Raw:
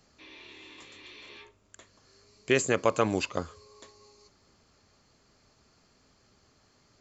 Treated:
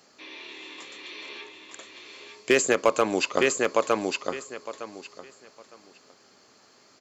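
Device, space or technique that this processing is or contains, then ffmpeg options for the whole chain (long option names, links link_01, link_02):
limiter into clipper: -af "highpass=280,aecho=1:1:909|1818|2727:0.562|0.112|0.0225,alimiter=limit=-14dB:level=0:latency=1:release=365,asoftclip=type=hard:threshold=-17.5dB,volume=7.5dB"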